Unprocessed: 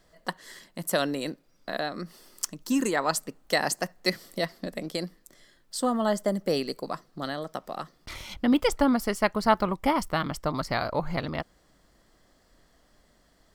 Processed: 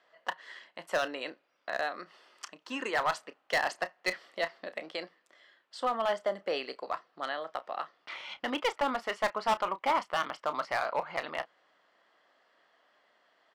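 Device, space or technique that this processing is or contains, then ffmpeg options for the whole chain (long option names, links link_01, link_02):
megaphone: -filter_complex "[0:a]highpass=700,lowpass=2500,equalizer=frequency=2900:width_type=o:width=0.46:gain=5,asoftclip=type=hard:threshold=-23.5dB,asplit=2[link_01][link_02];[link_02]adelay=31,volume=-13.5dB[link_03];[link_01][link_03]amix=inputs=2:normalize=0,volume=1.5dB"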